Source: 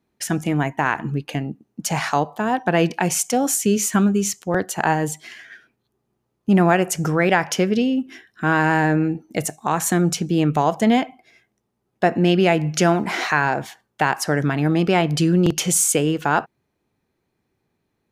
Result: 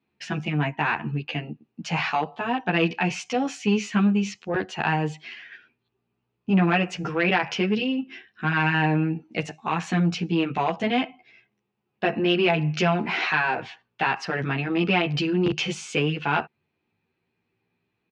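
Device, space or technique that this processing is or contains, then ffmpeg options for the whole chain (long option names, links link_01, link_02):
barber-pole flanger into a guitar amplifier: -filter_complex "[0:a]asplit=2[link_01][link_02];[link_02]adelay=11.7,afreqshift=0.26[link_03];[link_01][link_03]amix=inputs=2:normalize=1,asoftclip=type=tanh:threshold=-12dB,highpass=79,equalizer=frequency=290:width_type=q:width=4:gain=-3,equalizer=frequency=590:width_type=q:width=4:gain=-5,equalizer=frequency=2600:width_type=q:width=4:gain=10,lowpass=frequency=4600:width=0.5412,lowpass=frequency=4600:width=1.3066"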